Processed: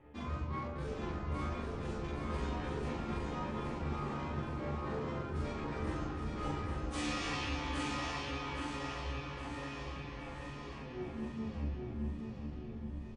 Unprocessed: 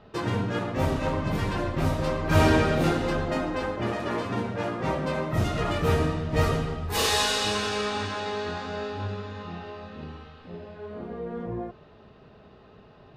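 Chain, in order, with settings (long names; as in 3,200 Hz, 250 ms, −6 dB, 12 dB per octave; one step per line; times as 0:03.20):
turntable brake at the end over 2.50 s
notch filter 940 Hz, Q 14
delay that swaps between a low-pass and a high-pass 432 ms, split 960 Hz, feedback 71%, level −11.5 dB
reversed playback
upward compression, threshold −24 dBFS
reversed playback
brickwall limiter −18 dBFS, peak gain reduction 11 dB
tuned comb filter 110 Hz, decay 0.21 s, harmonics all, mix 100%
pitch shifter −7 semitones
low-pass filter 9,700 Hz
double-tracking delay 41 ms −2 dB
on a send: repeating echo 818 ms, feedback 43%, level −4 dB
on the sum: level −3.5 dB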